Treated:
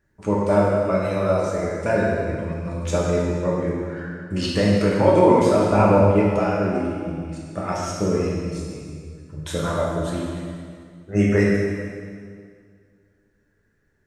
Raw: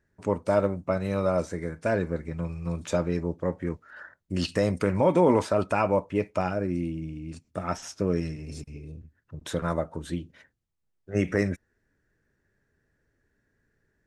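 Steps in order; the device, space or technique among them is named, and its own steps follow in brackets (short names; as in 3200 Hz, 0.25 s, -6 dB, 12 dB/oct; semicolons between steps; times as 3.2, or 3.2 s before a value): reverb removal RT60 1.2 s; 5.69–6.09 tilt -3.5 dB/oct; stairwell (reverb RT60 2.1 s, pre-delay 3 ms, DRR -5 dB); gain +1.5 dB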